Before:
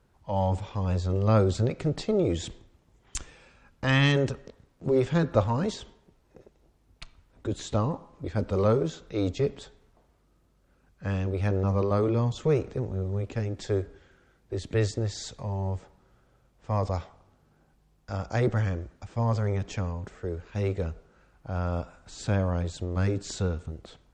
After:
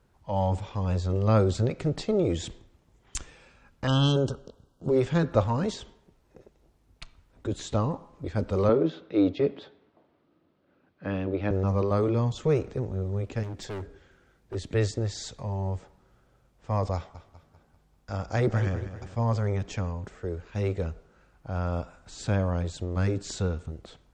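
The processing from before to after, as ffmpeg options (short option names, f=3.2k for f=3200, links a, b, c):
-filter_complex "[0:a]asettb=1/sr,asplit=3[a][b][c];[a]atrim=end=3.874[d];[b]atrim=start=3.87:end=4.9,asetpts=PTS-STARTPTS,afade=t=in:d=0.004:c=qsin,afade=t=out:st=1.026:d=0.004:c=qsin,asuperstop=centerf=2100:order=20:qfactor=1.8[e];[c]atrim=start=4.896[f];[d][e]acrossfade=d=0.004:c1=hsin:c2=qsin[g];[g][f]acrossfade=d=0.004:c1=qsin:c2=hsin,asettb=1/sr,asplit=3[h][i][j];[h]atrim=end=8.694[k];[i]atrim=start=8.69:end=11.51,asetpts=PTS-STARTPTS,afade=t=in:d=0.004:c=qsin,afade=t=out:st=2.816:d=0.004:c=qsin,highpass=f=100:w=0.5412,highpass=f=100:w=1.3066,equalizer=f=120:t=q:w=4:g=-10,equalizer=f=310:t=q:w=4:g=9,equalizer=f=590:t=q:w=4:g=4,lowpass=f=4k:w=0.5412,lowpass=f=4k:w=1.3066[l];[j]atrim=start=11.506[m];[k][l]acrossfade=d=0.004:c1=hsin:c2=qsin[n];[n][m]acrossfade=d=0.004:c1=qsin:c2=hsin,asettb=1/sr,asplit=3[o][p][q];[o]atrim=end=13.434[r];[p]atrim=start=13.43:end=14.55,asetpts=PTS-STARTPTS,afade=t=in:d=0.004:c=qsin,afade=t=out:st=1.116:d=0.004:c=qsin,volume=33dB,asoftclip=hard,volume=-33dB[s];[q]atrim=start=14.546[t];[r][s]acrossfade=d=0.004:c1=hsin:c2=qsin[u];[u][t]acrossfade=d=0.004:c1=qsin:c2=hsin,asettb=1/sr,asplit=3[v][w][x];[v]atrim=end=16.954[y];[w]atrim=start=16.95:end=19.15,asetpts=PTS-STARTPTS,afade=t=in:d=0.004:c=qsin,afade=t=out:st=2.196:d=0.004:c=qsin,aecho=1:1:196|392|588|784|980:0.251|0.118|0.0555|0.0261|0.0123,atrim=end_sample=97020[z];[x]atrim=start=19.146[aa];[y][z]acrossfade=d=0.004:c1=hsin:c2=qsin[ab];[ab][aa]acrossfade=d=0.004:c1=qsin:c2=hsin"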